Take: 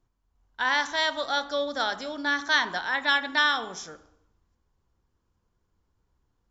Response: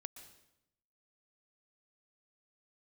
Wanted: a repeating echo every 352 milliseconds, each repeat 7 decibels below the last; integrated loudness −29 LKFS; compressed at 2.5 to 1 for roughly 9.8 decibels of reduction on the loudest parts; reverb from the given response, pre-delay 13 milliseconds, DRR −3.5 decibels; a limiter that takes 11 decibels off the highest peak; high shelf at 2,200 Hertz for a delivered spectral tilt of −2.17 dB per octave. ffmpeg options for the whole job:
-filter_complex "[0:a]highshelf=frequency=2200:gain=-3.5,acompressor=threshold=-34dB:ratio=2.5,alimiter=level_in=6.5dB:limit=-24dB:level=0:latency=1,volume=-6.5dB,aecho=1:1:352|704|1056|1408|1760:0.447|0.201|0.0905|0.0407|0.0183,asplit=2[link_01][link_02];[1:a]atrim=start_sample=2205,adelay=13[link_03];[link_02][link_03]afir=irnorm=-1:irlink=0,volume=8.5dB[link_04];[link_01][link_04]amix=inputs=2:normalize=0,volume=5.5dB"

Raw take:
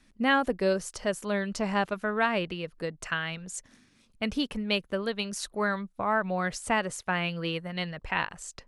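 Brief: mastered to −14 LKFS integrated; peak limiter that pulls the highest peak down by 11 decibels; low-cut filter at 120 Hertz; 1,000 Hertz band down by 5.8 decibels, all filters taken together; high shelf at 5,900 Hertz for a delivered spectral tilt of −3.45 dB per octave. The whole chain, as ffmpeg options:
ffmpeg -i in.wav -af "highpass=120,equalizer=frequency=1000:width_type=o:gain=-8,highshelf=frequency=5900:gain=8.5,volume=20.5dB,alimiter=limit=-3dB:level=0:latency=1" out.wav

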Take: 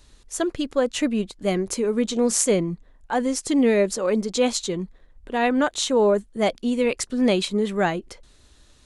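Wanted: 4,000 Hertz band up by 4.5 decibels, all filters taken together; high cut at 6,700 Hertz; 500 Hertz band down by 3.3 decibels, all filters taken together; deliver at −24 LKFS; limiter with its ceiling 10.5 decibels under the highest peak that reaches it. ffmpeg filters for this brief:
ffmpeg -i in.wav -af "lowpass=6700,equalizer=frequency=500:width_type=o:gain=-4,equalizer=frequency=4000:width_type=o:gain=6,volume=2dB,alimiter=limit=-13.5dB:level=0:latency=1" out.wav

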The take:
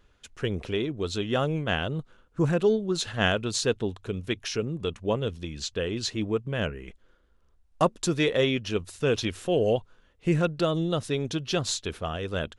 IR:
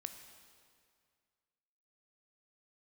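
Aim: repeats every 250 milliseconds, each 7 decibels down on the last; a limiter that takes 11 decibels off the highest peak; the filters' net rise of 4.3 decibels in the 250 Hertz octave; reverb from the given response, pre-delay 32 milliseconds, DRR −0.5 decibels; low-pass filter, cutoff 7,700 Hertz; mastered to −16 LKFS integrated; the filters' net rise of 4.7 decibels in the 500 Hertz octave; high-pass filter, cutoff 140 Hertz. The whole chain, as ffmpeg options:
-filter_complex "[0:a]highpass=140,lowpass=7700,equalizer=frequency=250:width_type=o:gain=5.5,equalizer=frequency=500:width_type=o:gain=4,alimiter=limit=-15.5dB:level=0:latency=1,aecho=1:1:250|500|750|1000|1250:0.447|0.201|0.0905|0.0407|0.0183,asplit=2[link_01][link_02];[1:a]atrim=start_sample=2205,adelay=32[link_03];[link_02][link_03]afir=irnorm=-1:irlink=0,volume=3.5dB[link_04];[link_01][link_04]amix=inputs=2:normalize=0,volume=8dB"

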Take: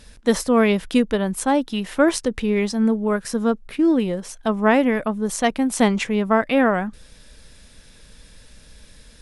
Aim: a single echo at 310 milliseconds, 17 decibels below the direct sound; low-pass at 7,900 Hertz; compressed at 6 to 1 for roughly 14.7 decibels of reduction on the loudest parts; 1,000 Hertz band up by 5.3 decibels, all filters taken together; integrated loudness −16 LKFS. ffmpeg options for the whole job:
ffmpeg -i in.wav -af "lowpass=7900,equalizer=frequency=1000:width_type=o:gain=7,acompressor=threshold=-26dB:ratio=6,aecho=1:1:310:0.141,volume=14dB" out.wav

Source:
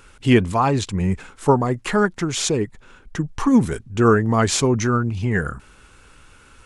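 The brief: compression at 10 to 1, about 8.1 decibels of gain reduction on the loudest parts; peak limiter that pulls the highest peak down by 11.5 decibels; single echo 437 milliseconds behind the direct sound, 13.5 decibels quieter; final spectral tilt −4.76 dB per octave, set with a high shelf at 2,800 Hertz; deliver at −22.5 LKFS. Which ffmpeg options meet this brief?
ffmpeg -i in.wav -af "highshelf=frequency=2800:gain=4.5,acompressor=threshold=-17dB:ratio=10,alimiter=limit=-19dB:level=0:latency=1,aecho=1:1:437:0.211,volume=6dB" out.wav

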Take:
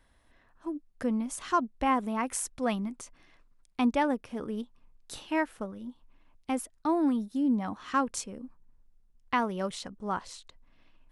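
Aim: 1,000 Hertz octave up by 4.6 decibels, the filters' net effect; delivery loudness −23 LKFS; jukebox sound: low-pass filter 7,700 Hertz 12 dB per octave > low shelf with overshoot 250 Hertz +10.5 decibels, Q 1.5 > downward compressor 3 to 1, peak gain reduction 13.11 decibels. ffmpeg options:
ffmpeg -i in.wav -af "lowpass=7700,lowshelf=frequency=250:width_type=q:width=1.5:gain=10.5,equalizer=frequency=1000:width_type=o:gain=6,acompressor=threshold=-33dB:ratio=3,volume=13dB" out.wav

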